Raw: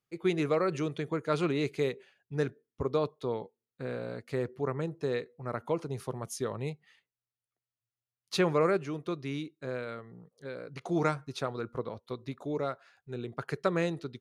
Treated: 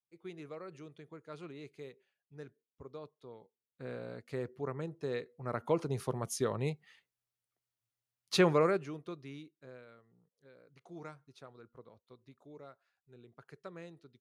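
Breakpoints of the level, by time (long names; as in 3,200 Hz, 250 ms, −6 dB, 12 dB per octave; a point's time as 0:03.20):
0:03.41 −18 dB
0:03.88 −6 dB
0:05.02 −6 dB
0:05.80 +1 dB
0:08.46 +1 dB
0:09.01 −8 dB
0:10.03 −19 dB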